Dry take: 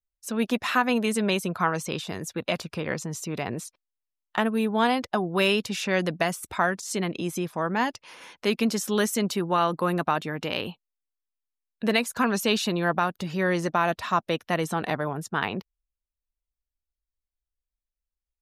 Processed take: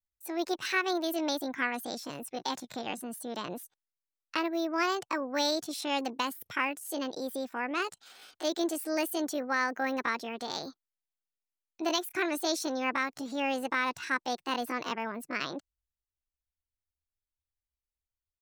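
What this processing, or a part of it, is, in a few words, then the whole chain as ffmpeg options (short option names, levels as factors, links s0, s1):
chipmunk voice: -af "asetrate=66075,aresample=44100,atempo=0.66742,volume=0.473"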